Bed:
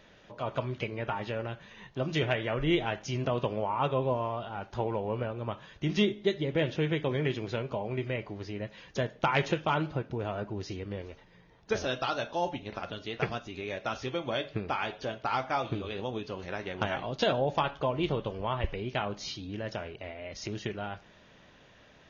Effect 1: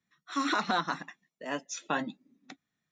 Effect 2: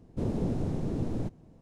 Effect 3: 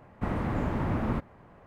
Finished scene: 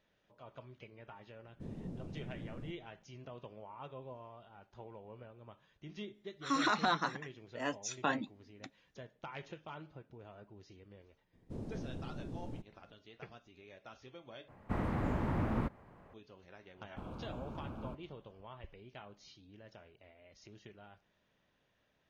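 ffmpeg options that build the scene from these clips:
ffmpeg -i bed.wav -i cue0.wav -i cue1.wav -i cue2.wav -filter_complex "[2:a]asplit=2[link_01][link_02];[3:a]asplit=2[link_03][link_04];[0:a]volume=-19.5dB[link_05];[link_01]equalizer=frequency=170:width_type=o:width=0.77:gain=6[link_06];[1:a]aresample=32000,aresample=44100[link_07];[link_04]asuperstop=centerf=1900:order=4:qfactor=2.5[link_08];[link_05]asplit=2[link_09][link_10];[link_09]atrim=end=14.484[link_11];[link_03]atrim=end=1.66,asetpts=PTS-STARTPTS,volume=-5dB[link_12];[link_10]atrim=start=16.136[link_13];[link_06]atrim=end=1.61,asetpts=PTS-STARTPTS,volume=-17.5dB,afade=type=in:duration=0.004:curve=hsin,afade=type=out:start_time=1.606:duration=0.004:curve=hsin,adelay=1430[link_14];[link_07]atrim=end=2.91,asetpts=PTS-STARTPTS,volume=-2.5dB,afade=type=in:duration=0.004:curve=hsin,afade=type=out:start_time=2.906:duration=0.004:curve=hsin,adelay=6140[link_15];[link_02]atrim=end=1.61,asetpts=PTS-STARTPTS,volume=-13dB,afade=type=in:duration=0.004:curve=hsin,afade=type=out:start_time=1.606:duration=0.004:curve=hsin,adelay=11330[link_16];[link_08]atrim=end=1.66,asetpts=PTS-STARTPTS,volume=-16dB,afade=type=in:duration=0.004:curve=hsin,afade=type=out:start_time=1.656:duration=0.004:curve=hsin,adelay=16750[link_17];[link_11][link_12]acrossfade=duration=0.004:curve1=hsin:curve2=hsin[link_18];[link_18][link_13]acrossfade=duration=0.004:curve1=hsin:curve2=hsin[link_19];[link_19][link_14][link_15][link_16][link_17]amix=inputs=5:normalize=0" out.wav

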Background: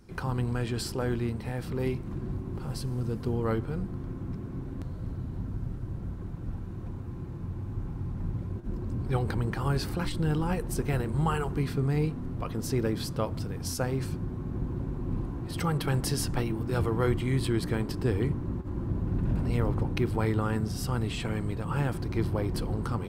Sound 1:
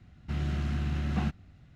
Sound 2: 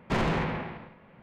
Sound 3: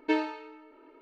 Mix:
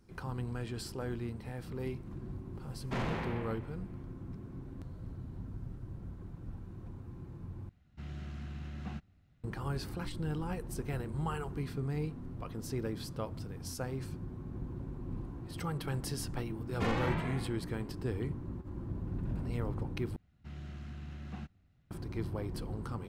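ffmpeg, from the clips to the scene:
ffmpeg -i bed.wav -i cue0.wav -i cue1.wav -filter_complex "[2:a]asplit=2[link_01][link_02];[1:a]asplit=2[link_03][link_04];[0:a]volume=-8.5dB[link_05];[link_02]asplit=2[link_06][link_07];[link_07]adelay=2.5,afreqshift=1.8[link_08];[link_06][link_08]amix=inputs=2:normalize=1[link_09];[link_05]asplit=3[link_10][link_11][link_12];[link_10]atrim=end=7.694[link_13];[link_03]atrim=end=1.75,asetpts=PTS-STARTPTS,volume=-12dB[link_14];[link_11]atrim=start=9.436:end=20.164[link_15];[link_04]atrim=end=1.75,asetpts=PTS-STARTPTS,volume=-14dB[link_16];[link_12]atrim=start=21.906[link_17];[link_01]atrim=end=1.22,asetpts=PTS-STARTPTS,volume=-9dB,afade=type=in:duration=0.004:curve=hsin,afade=type=out:start_time=1.216:duration=0.004:curve=hsin,adelay=2810[link_18];[link_09]atrim=end=1.22,asetpts=PTS-STARTPTS,volume=-3dB,afade=type=in:duration=0.004:curve=hsin,afade=type=out:start_time=1.216:duration=0.004:curve=hsin,adelay=16700[link_19];[link_13][link_14]acrossfade=duration=0.004:curve1=hsin:curve2=hsin[link_20];[link_20][link_15]acrossfade=duration=0.004:curve1=hsin:curve2=hsin[link_21];[link_21][link_16]acrossfade=duration=0.004:curve1=hsin:curve2=hsin[link_22];[link_22][link_17]acrossfade=duration=0.004:curve1=hsin:curve2=hsin[link_23];[link_23][link_18][link_19]amix=inputs=3:normalize=0" out.wav

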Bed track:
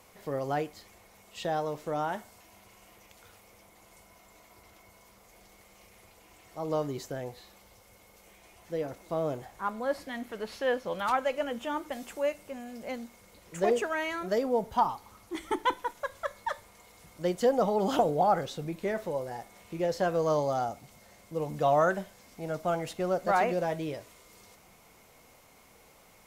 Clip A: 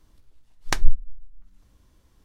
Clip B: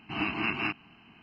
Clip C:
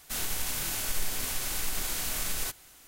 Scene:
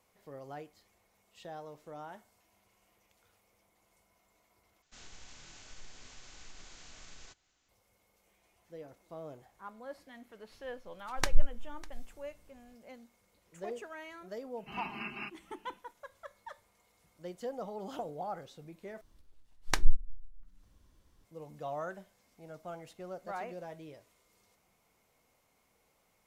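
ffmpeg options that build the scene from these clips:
ffmpeg -i bed.wav -i cue0.wav -i cue1.wav -i cue2.wav -filter_complex "[1:a]asplit=2[link_01][link_02];[0:a]volume=-14.5dB[link_03];[3:a]aresample=16000,aresample=44100[link_04];[link_01]aecho=1:1:600:0.0891[link_05];[2:a]aecho=1:1:4.9:0.92[link_06];[link_02]bandreject=frequency=60:width_type=h:width=6,bandreject=frequency=120:width_type=h:width=6,bandreject=frequency=180:width_type=h:width=6,bandreject=frequency=240:width_type=h:width=6,bandreject=frequency=300:width_type=h:width=6,bandreject=frequency=360:width_type=h:width=6,bandreject=frequency=420:width_type=h:width=6,bandreject=frequency=480:width_type=h:width=6[link_07];[link_03]asplit=3[link_08][link_09][link_10];[link_08]atrim=end=4.824[link_11];[link_04]atrim=end=2.87,asetpts=PTS-STARTPTS,volume=-18dB[link_12];[link_09]atrim=start=7.686:end=19.014[link_13];[link_07]atrim=end=2.24,asetpts=PTS-STARTPTS,volume=-5.5dB[link_14];[link_10]atrim=start=21.246[link_15];[link_05]atrim=end=2.24,asetpts=PTS-STARTPTS,volume=-6.5dB,afade=type=in:duration=0.004:curve=hsin,afade=type=out:start_time=2.236:duration=0.004:curve=hsin,adelay=10510[link_16];[link_06]atrim=end=1.22,asetpts=PTS-STARTPTS,volume=-13.5dB,afade=type=in:duration=0.004:curve=hsin,afade=type=out:start_time=1.216:duration=0.004:curve=hsin,adelay=14570[link_17];[link_11][link_12]acrossfade=duration=0.004:curve1=hsin:curve2=hsin[link_18];[link_18][link_13]acrossfade=duration=0.004:curve1=hsin:curve2=hsin[link_19];[link_19][link_14]acrossfade=duration=0.004:curve1=hsin:curve2=hsin[link_20];[link_20][link_15]acrossfade=duration=0.004:curve1=hsin:curve2=hsin[link_21];[link_21][link_16][link_17]amix=inputs=3:normalize=0" out.wav

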